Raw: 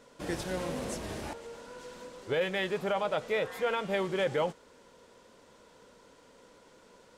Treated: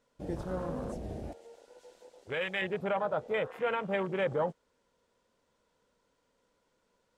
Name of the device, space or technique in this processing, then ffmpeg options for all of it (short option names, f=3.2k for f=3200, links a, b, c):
low shelf boost with a cut just above: -filter_complex "[0:a]afwtdn=0.0158,asettb=1/sr,asplit=3[a][b][c];[a]atrim=end=1.324[d];[b]atrim=start=1.32:end=2.62,asetpts=PTS-STARTPTS,afade=t=in:d=0.004:c=qsin,afade=t=out:st=1.296:d=0.004:c=qsin,tiltshelf=f=1.5k:g=-6.5[e];[c]atrim=start=2.616[f];[d][e]acrossfade=d=0.004:c1=hsin:c2=qsin[g];[g][f]acrossfade=d=0.004:c1=qsin:c2=hsin,lowshelf=f=75:g=6,equalizer=f=350:t=o:w=0.97:g=-2.5"